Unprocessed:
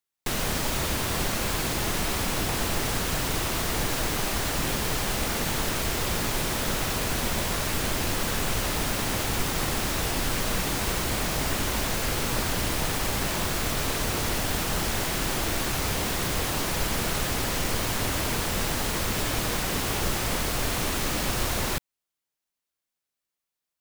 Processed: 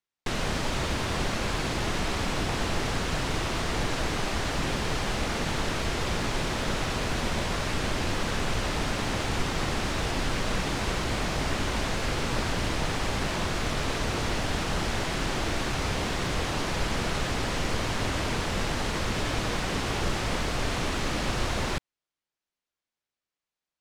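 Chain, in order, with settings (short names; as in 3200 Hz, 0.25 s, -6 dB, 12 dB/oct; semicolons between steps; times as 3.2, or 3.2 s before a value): air absorption 79 m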